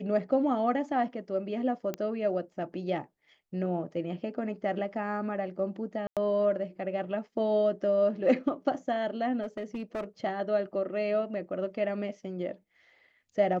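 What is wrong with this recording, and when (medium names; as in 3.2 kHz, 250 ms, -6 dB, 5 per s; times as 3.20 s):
1.94 s: pop -19 dBFS
6.07–6.17 s: dropout 97 ms
9.42–10.04 s: clipped -30 dBFS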